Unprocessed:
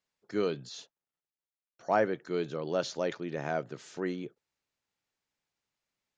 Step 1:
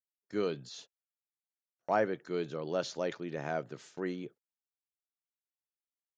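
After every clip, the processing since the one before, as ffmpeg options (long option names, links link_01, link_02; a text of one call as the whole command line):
ffmpeg -i in.wav -af "agate=range=-30dB:threshold=-50dB:ratio=16:detection=peak,volume=-2.5dB" out.wav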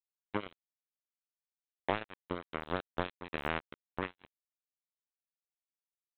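ffmpeg -i in.wav -af "acompressor=threshold=-35dB:ratio=20,aresample=8000,acrusher=bits=4:mix=0:aa=0.5,aresample=44100,volume=8dB" out.wav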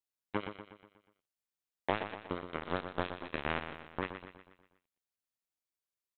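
ffmpeg -i in.wav -af "aecho=1:1:121|242|363|484|605|726:0.355|0.181|0.0923|0.0471|0.024|0.0122" out.wav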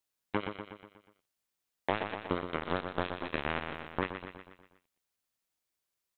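ffmpeg -i in.wav -af "alimiter=limit=-21.5dB:level=0:latency=1:release=327,volume=7dB" out.wav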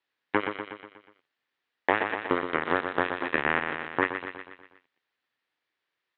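ffmpeg -i in.wav -filter_complex "[0:a]highpass=170,equalizer=frequency=190:width_type=q:width=4:gain=-10,equalizer=frequency=630:width_type=q:width=4:gain=-4,equalizer=frequency=1800:width_type=q:width=4:gain=7,lowpass=frequency=3800:width=0.5412,lowpass=frequency=3800:width=1.3066,acrossover=split=3000[link_01][link_02];[link_02]acompressor=threshold=-55dB:ratio=4:attack=1:release=60[link_03];[link_01][link_03]amix=inputs=2:normalize=0,volume=8dB" out.wav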